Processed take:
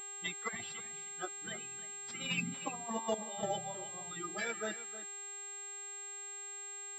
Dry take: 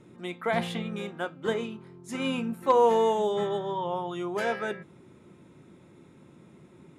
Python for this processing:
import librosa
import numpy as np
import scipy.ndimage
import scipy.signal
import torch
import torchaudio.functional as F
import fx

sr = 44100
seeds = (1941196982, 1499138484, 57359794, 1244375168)

y = fx.bin_expand(x, sr, power=3.0)
y = scipy.signal.sosfilt(scipy.signal.butter(2, 190.0, 'highpass', fs=sr, output='sos'), y)
y = fx.spec_gate(y, sr, threshold_db=-10, keep='weak')
y = fx.over_compress(y, sr, threshold_db=-45.0, ratio=-0.5)
y = fx.tremolo_random(y, sr, seeds[0], hz=3.5, depth_pct=80)
y = fx.dmg_buzz(y, sr, base_hz=400.0, harmonics=11, level_db=-66.0, tilt_db=-1, odd_only=False)
y = y + 10.0 ** (-14.0 / 20.0) * np.pad(y, (int(313 * sr / 1000.0), 0))[:len(y)]
y = fx.pwm(y, sr, carrier_hz=7500.0)
y = F.gain(torch.from_numpy(y), 12.0).numpy()